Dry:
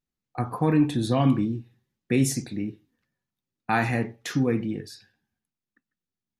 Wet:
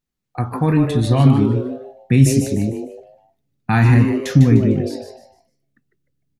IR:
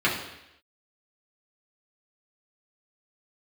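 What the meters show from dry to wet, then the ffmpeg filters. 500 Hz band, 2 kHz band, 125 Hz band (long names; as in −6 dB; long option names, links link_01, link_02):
+7.5 dB, +5.0 dB, +13.5 dB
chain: -filter_complex "[0:a]asubboost=boost=8.5:cutoff=160,asplit=5[link_01][link_02][link_03][link_04][link_05];[link_02]adelay=151,afreqshift=140,volume=-8dB[link_06];[link_03]adelay=302,afreqshift=280,volume=-17.9dB[link_07];[link_04]adelay=453,afreqshift=420,volume=-27.8dB[link_08];[link_05]adelay=604,afreqshift=560,volume=-37.7dB[link_09];[link_01][link_06][link_07][link_08][link_09]amix=inputs=5:normalize=0,volume=4.5dB"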